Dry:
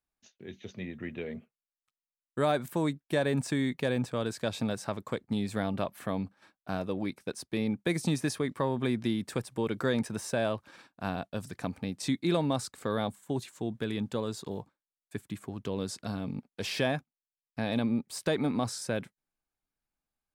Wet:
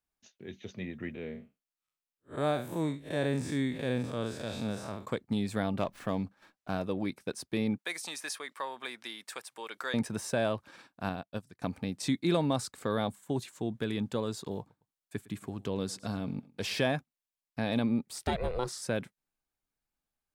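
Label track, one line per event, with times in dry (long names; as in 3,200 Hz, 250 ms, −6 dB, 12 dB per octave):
1.140000	5.070000	spectrum smeared in time width 122 ms
5.790000	6.720000	windowed peak hold over 3 samples
7.780000	9.940000	high-pass filter 940 Hz
11.090000	11.620000	expander for the loud parts 2.5 to 1, over −44 dBFS
14.590000	16.750000	repeating echo 109 ms, feedback 33%, level −21.5 dB
18.130000	18.830000	ring modulation 250 Hz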